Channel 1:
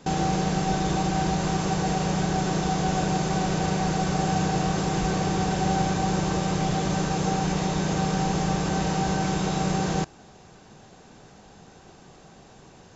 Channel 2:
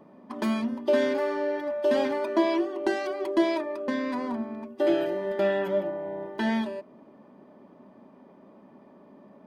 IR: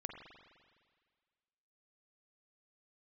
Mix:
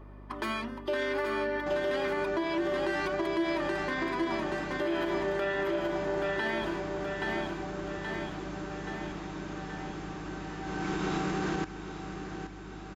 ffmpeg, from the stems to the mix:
-filter_complex "[0:a]highshelf=f=3.4k:g=-10.5,adelay=1600,volume=-9.5dB,afade=t=in:st=10.62:d=0.48:silence=0.281838,asplit=2[a][b];[b]volume=-11.5dB[c];[1:a]lowshelf=f=350:t=q:w=1.5:g=-7.5,volume=-7.5dB,asplit=2[d][e];[e]volume=-6dB[f];[c][f]amix=inputs=2:normalize=0,aecho=0:1:826|1652|2478|3304|4130|4956|5782|6608|7434:1|0.58|0.336|0.195|0.113|0.0656|0.0381|0.0221|0.0128[g];[a][d][g]amix=inputs=3:normalize=0,firequalizer=gain_entry='entry(160,0);entry(320,14);entry(520,0);entry(1300,13);entry(5800,7)':delay=0.05:min_phase=1,aeval=exprs='val(0)+0.00447*(sin(2*PI*50*n/s)+sin(2*PI*2*50*n/s)/2+sin(2*PI*3*50*n/s)/3+sin(2*PI*4*50*n/s)/4+sin(2*PI*5*50*n/s)/5)':c=same,alimiter=limit=-22dB:level=0:latency=1:release=82"

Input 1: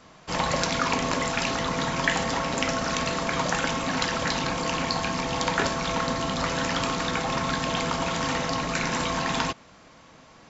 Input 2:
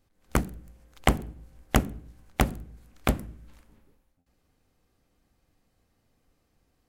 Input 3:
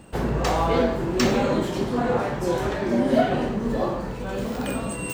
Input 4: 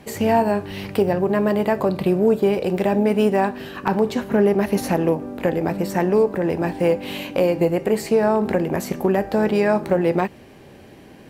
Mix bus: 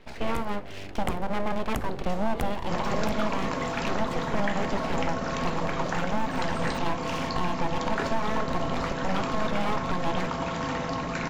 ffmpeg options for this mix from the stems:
-filter_complex "[0:a]highshelf=f=2.8k:g=-11.5,adelay=2400,volume=-1.5dB[a];[1:a]volume=-8dB[b];[2:a]adelay=1650,volume=-16.5dB[c];[3:a]lowpass=f=4.1k:w=0.5412,lowpass=f=4.1k:w=1.3066,equalizer=f=880:t=o:w=0.45:g=-12.5,aeval=exprs='abs(val(0))':c=same,volume=-5dB[d];[a][b][c][d]amix=inputs=4:normalize=0,alimiter=limit=-15.5dB:level=0:latency=1:release=214"

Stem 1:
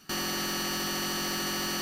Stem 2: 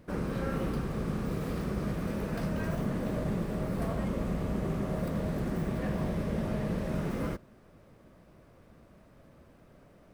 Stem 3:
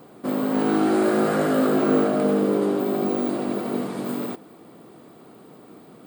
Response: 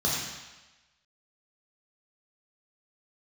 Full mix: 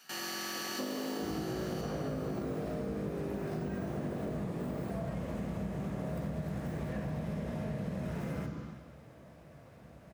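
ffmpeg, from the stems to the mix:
-filter_complex "[0:a]highpass=f=400:p=1,acontrast=61,volume=-7dB,asplit=3[a][b][c];[b]volume=-18.5dB[d];[c]volume=-18.5dB[e];[1:a]adelay=1100,volume=2.5dB,asplit=2[f][g];[g]volume=-15.5dB[h];[2:a]equalizer=f=470:w=0.35:g=11.5,acompressor=threshold=-20dB:ratio=2,adelay=550,volume=-11.5dB[i];[a][f]amix=inputs=2:normalize=0,highpass=570,alimiter=level_in=6dB:limit=-24dB:level=0:latency=1:release=69,volume=-6dB,volume=0dB[j];[3:a]atrim=start_sample=2205[k];[d][h]amix=inputs=2:normalize=0[l];[l][k]afir=irnorm=-1:irlink=0[m];[e]aecho=0:1:614:1[n];[i][j][m][n]amix=inputs=4:normalize=0,acompressor=threshold=-34dB:ratio=6"

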